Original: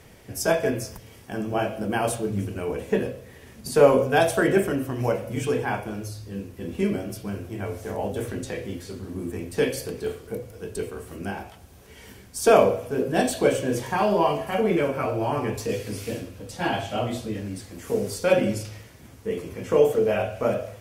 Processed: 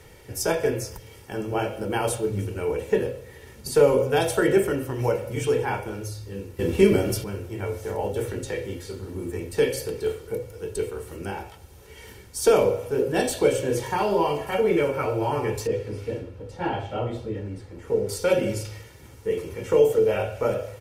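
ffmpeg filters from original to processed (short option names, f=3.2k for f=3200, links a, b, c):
-filter_complex "[0:a]asettb=1/sr,asplit=3[a][b][c];[a]atrim=end=15.674[d];[b]atrim=start=15.67:end=18.09,asetpts=PTS-STARTPTS,afade=t=in:d=0.004:c=qsin,afade=t=out:st=2.416:d=0.004:c=qsin,lowpass=f=1.2k:p=1[e];[c]atrim=start=18.086[f];[d][e]acrossfade=d=0.004:c1=hsin:c2=qsin[g];[g][f]acrossfade=d=0.004:c1=qsin:c2=hsin,asplit=3[h][i][j];[h]atrim=end=6.592[k];[i]atrim=start=6.588:end=7.242,asetpts=PTS-STARTPTS,volume=8.5dB[l];[j]atrim=start=7.238[m];[k][l]acrossfade=d=0.004:c1=hsin:c2=hsin[n];[n][m]acrossfade=d=0.004:c1=hsin:c2=hsin,aecho=1:1:2.2:0.51,acrossover=split=420|3000[o][p][q];[p]acompressor=threshold=-23dB:ratio=2.5[r];[o][r][q]amix=inputs=3:normalize=0"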